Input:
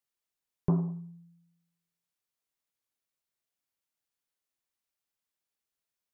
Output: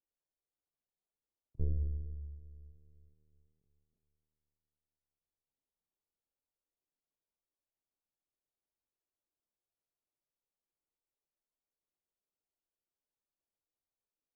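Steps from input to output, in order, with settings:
low-pass filter 1,200 Hz 12 dB per octave
parametric band 300 Hz −9 dB 3 octaves
soft clipping −19.5 dBFS, distortion −29 dB
convolution reverb RT60 1.7 s, pre-delay 5 ms, DRR 14 dB
linear-prediction vocoder at 8 kHz pitch kept
wrong playback speed 78 rpm record played at 33 rpm
level +1.5 dB

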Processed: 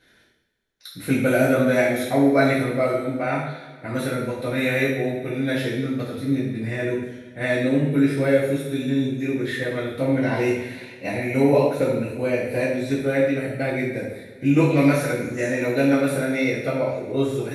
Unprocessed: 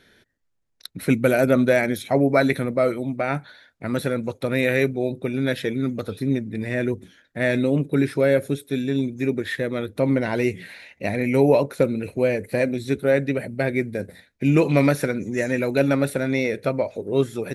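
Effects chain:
coupled-rooms reverb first 0.76 s, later 2.6 s, from −18 dB, DRR −9 dB
level −8.5 dB

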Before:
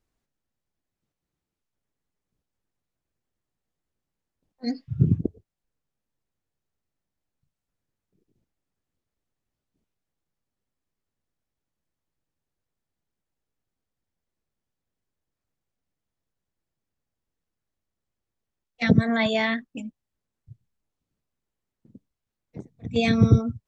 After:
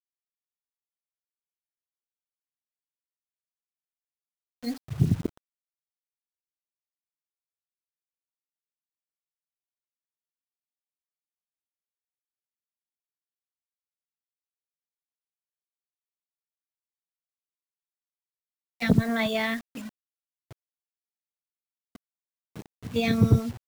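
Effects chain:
harmonic generator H 2 −16 dB, 4 −23 dB, 6 −27 dB, 7 −35 dB, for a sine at −4.5 dBFS
bit reduction 7 bits
level −2.5 dB

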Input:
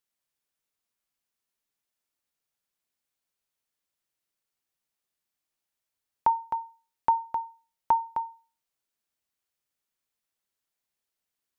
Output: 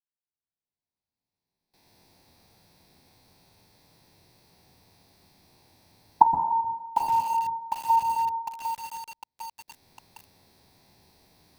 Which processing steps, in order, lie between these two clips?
spectrum averaged block by block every 100 ms
camcorder AGC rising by 16 dB per second
noise gate with hold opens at −49 dBFS
high-shelf EQ 2,100 Hz −8 dB
convolution reverb RT60 1.0 s, pre-delay 121 ms, DRR 6 dB
feedback echo at a low word length 753 ms, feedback 55%, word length 5 bits, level −8.5 dB
level −3 dB

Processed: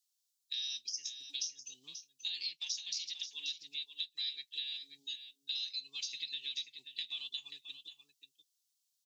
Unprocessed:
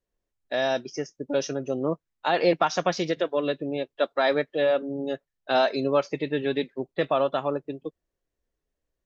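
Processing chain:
inverse Chebyshev high-pass filter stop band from 1,500 Hz, stop band 50 dB
downward compressor 6 to 1, threshold −49 dBFS, peak gain reduction 16.5 dB
single-tap delay 534 ms −10 dB
level +12 dB

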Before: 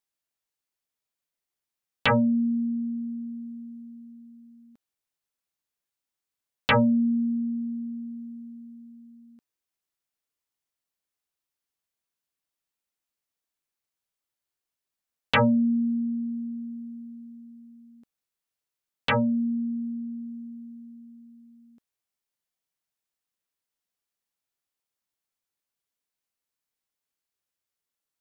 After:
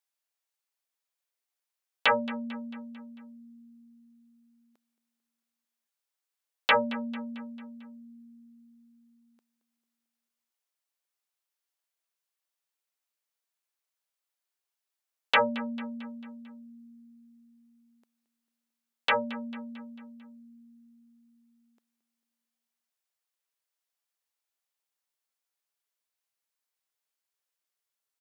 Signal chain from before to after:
high-pass filter 490 Hz 12 dB per octave
on a send: repeating echo 223 ms, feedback 54%, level −17 dB

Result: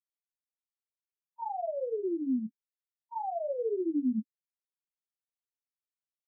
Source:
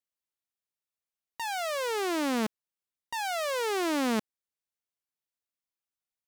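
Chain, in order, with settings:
spectral peaks only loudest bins 2
multi-voice chorus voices 2, 0.43 Hz, delay 18 ms, depth 4.3 ms
level +3.5 dB

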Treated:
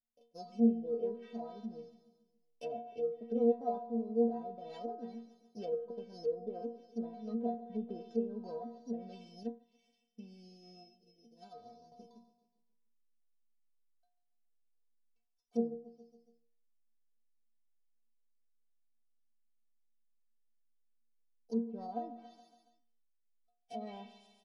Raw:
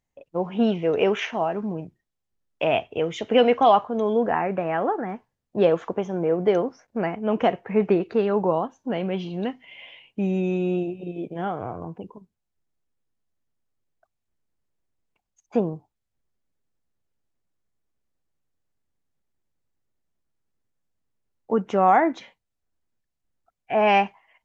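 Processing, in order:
samples sorted by size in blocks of 8 samples
high-frequency loss of the air 61 metres
stiff-string resonator 230 Hz, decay 0.44 s, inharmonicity 0.008
repeating echo 140 ms, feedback 54%, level −16.5 dB
treble cut that deepens with the level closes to 760 Hz, closed at −34.5 dBFS
flat-topped bell 1,400 Hz −10.5 dB
0:09.43–0:11.92: expander for the loud parts 1.5 to 1, over −59 dBFS

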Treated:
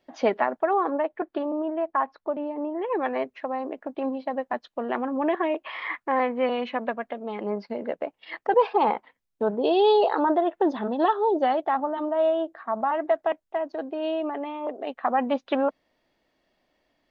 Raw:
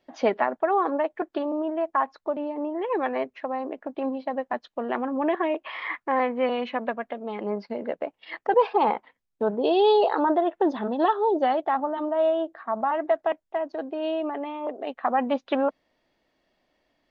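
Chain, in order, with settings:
0:00.73–0:03.05: high-frequency loss of the air 170 metres

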